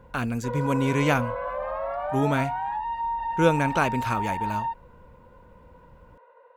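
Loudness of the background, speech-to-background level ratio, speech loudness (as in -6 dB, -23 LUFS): -30.5 LUFS, 4.0 dB, -26.5 LUFS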